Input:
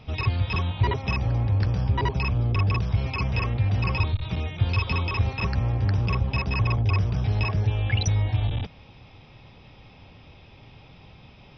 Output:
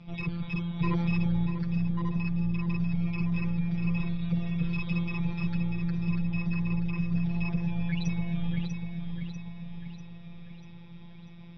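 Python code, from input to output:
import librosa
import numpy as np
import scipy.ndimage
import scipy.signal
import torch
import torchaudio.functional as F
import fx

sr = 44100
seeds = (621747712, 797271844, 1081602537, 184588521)

y = scipy.signal.sosfilt(scipy.signal.butter(2, 69.0, 'highpass', fs=sr, output='sos'), x)
y = fx.bass_treble(y, sr, bass_db=11, treble_db=3)
y = y + 0.78 * np.pad(y, (int(5.0 * sr / 1000.0), 0))[:len(y)]
y = fx.rider(y, sr, range_db=10, speed_s=0.5)
y = fx.robotise(y, sr, hz=171.0)
y = 10.0 ** (-12.0 / 20.0) * np.tanh(y / 10.0 ** (-12.0 / 20.0))
y = fx.air_absorb(y, sr, metres=170.0)
y = fx.echo_feedback(y, sr, ms=643, feedback_pct=53, wet_db=-6.5)
y = fx.env_flatten(y, sr, amount_pct=70, at=(0.79, 1.45), fade=0.02)
y = F.gain(torch.from_numpy(y), -8.0).numpy()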